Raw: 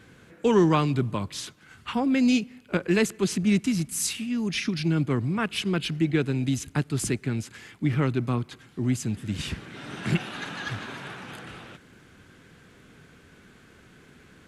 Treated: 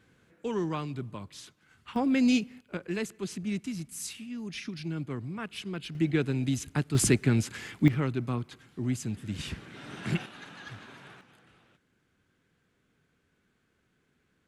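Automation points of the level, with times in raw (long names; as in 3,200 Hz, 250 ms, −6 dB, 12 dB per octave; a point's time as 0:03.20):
−11.5 dB
from 0:01.96 −2.5 dB
from 0:02.61 −10.5 dB
from 0:05.95 −3 dB
from 0:06.95 +4 dB
from 0:07.88 −5 dB
from 0:10.26 −11.5 dB
from 0:11.21 −19.5 dB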